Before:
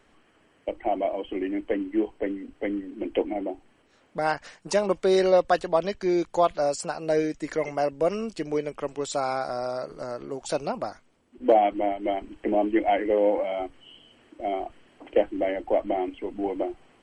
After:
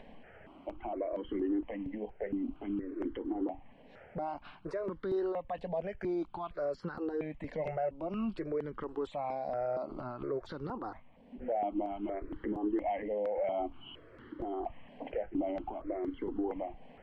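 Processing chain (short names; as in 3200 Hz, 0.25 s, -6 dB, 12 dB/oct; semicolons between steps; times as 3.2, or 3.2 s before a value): 5.88–6.65 high shelf 5000 Hz +9.5 dB; 7.55–8.46 comb 5.5 ms, depth 54%; compressor 2:1, threshold -37 dBFS, peak gain reduction 12.5 dB; limiter -31 dBFS, peak gain reduction 11 dB; upward compressor, threshold -50 dBFS; air absorption 460 m; step phaser 4.3 Hz 350–2500 Hz; gain +8 dB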